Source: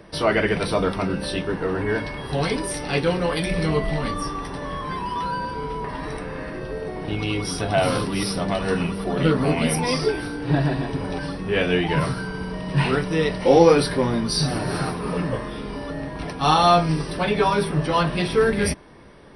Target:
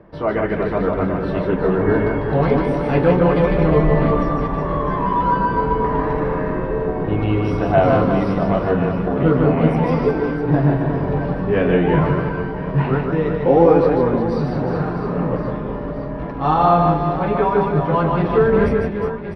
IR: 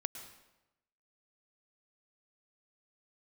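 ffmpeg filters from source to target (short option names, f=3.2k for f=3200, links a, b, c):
-filter_complex "[0:a]asplit=2[a][b];[b]aecho=0:1:150|360|654|1066|1642:0.631|0.398|0.251|0.158|0.1[c];[a][c]amix=inputs=2:normalize=0,dynaudnorm=f=520:g=5:m=11.5dB,lowpass=1.3k"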